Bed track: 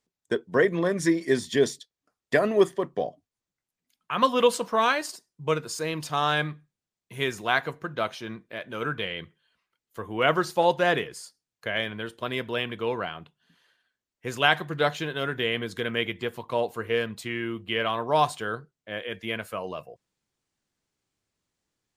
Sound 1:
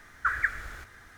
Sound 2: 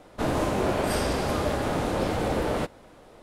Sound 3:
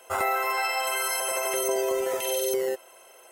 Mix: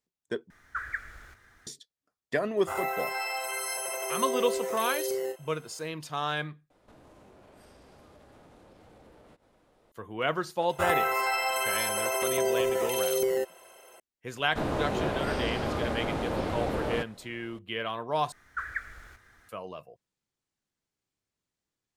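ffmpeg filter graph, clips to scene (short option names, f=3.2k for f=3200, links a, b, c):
-filter_complex "[1:a]asplit=2[a][b];[3:a]asplit=2[c][d];[2:a]asplit=2[e][f];[0:a]volume=-6.5dB[g];[c]asplit=2[h][i];[i]adelay=33,volume=-7dB[j];[h][j]amix=inputs=2:normalize=0[k];[e]acompressor=threshold=-39dB:ratio=6:attack=3.2:release=140:knee=1:detection=peak[l];[d]bass=f=250:g=7,treble=f=4k:g=-2[m];[f]acrossover=split=4700[n][o];[o]acompressor=threshold=-50dB:ratio=4:attack=1:release=60[p];[n][p]amix=inputs=2:normalize=0[q];[g]asplit=4[r][s][t][u];[r]atrim=end=0.504[v];[a]atrim=end=1.17,asetpts=PTS-STARTPTS,volume=-7.5dB[w];[s]atrim=start=1.666:end=6.704[x];[l]atrim=end=3.22,asetpts=PTS-STARTPTS,volume=-14dB[y];[t]atrim=start=9.916:end=18.324[z];[b]atrim=end=1.17,asetpts=PTS-STARTPTS,volume=-7.5dB[aa];[u]atrim=start=19.486[ab];[k]atrim=end=3.31,asetpts=PTS-STARTPTS,volume=-7dB,afade=t=in:d=0.004:c=hsin,afade=t=out:st=3.306:d=0.004:c=hsin,adelay=2570[ac];[m]atrim=end=3.31,asetpts=PTS-STARTPTS,volume=-1dB,afade=t=in:d=0.004:c=hsin,afade=t=out:st=3.306:d=0.004:c=hsin,adelay=10690[ad];[q]atrim=end=3.22,asetpts=PTS-STARTPTS,volume=-4.5dB,afade=t=in:d=0.004:c=hsin,afade=t=out:st=3.216:d=0.004:c=hsin,adelay=14370[ae];[v][w]acrossfade=d=0.004:c1=hsin:c2=hsin[af];[af][x]acrossfade=d=0.004:c1=hsin:c2=hsin[ag];[ag][y]acrossfade=d=0.004:c1=hsin:c2=hsin[ah];[ah][z]acrossfade=d=0.004:c1=hsin:c2=hsin[ai];[ai][aa]acrossfade=d=0.004:c1=hsin:c2=hsin[aj];[aj][ab]acrossfade=d=0.004:c1=hsin:c2=hsin[ak];[ak][ac][ad][ae]amix=inputs=4:normalize=0"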